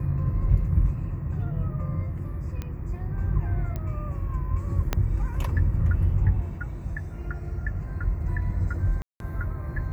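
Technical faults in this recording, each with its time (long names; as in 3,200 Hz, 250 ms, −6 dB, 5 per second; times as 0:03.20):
0:02.62: click −20 dBFS
0:03.76: click −20 dBFS
0:04.93: click −9 dBFS
0:09.02–0:09.20: drop-out 182 ms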